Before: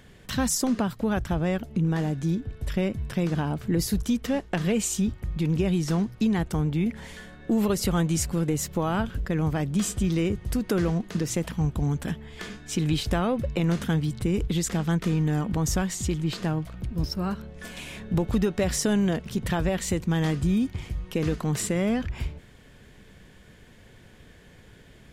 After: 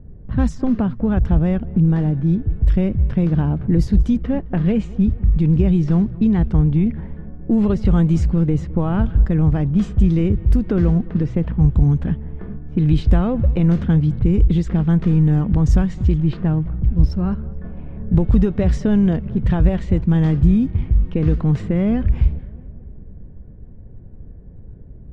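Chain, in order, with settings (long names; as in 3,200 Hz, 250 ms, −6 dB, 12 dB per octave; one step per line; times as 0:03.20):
RIAA equalisation playback
low-pass that shuts in the quiet parts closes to 530 Hz, open at −9.5 dBFS
feedback echo with a low-pass in the loop 213 ms, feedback 64%, low-pass 2,100 Hz, level −21 dB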